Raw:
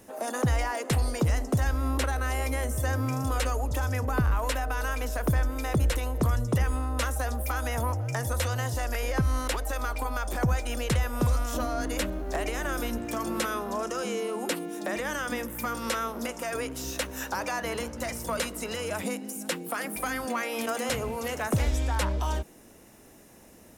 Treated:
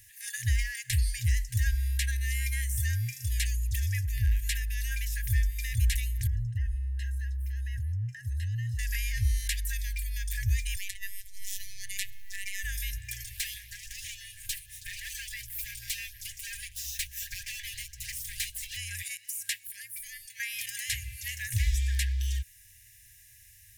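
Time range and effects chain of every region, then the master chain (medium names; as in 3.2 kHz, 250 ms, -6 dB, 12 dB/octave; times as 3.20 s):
6.27–8.79 s: boxcar filter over 38 samples + tilt EQ +1.5 dB/octave + level flattener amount 50%
10.76–12.64 s: compressor with a negative ratio -27 dBFS, ratio -0.5 + robot voice 196 Hz
13.24–18.77 s: comb filter that takes the minimum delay 5.6 ms + LFO notch saw up 6.2 Hz 930–2300 Hz
19.67–20.40 s: amplifier tone stack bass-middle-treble 5-5-5 + frequency shift -64 Hz
whole clip: FFT band-reject 120–1600 Hz; treble shelf 12 kHz +7.5 dB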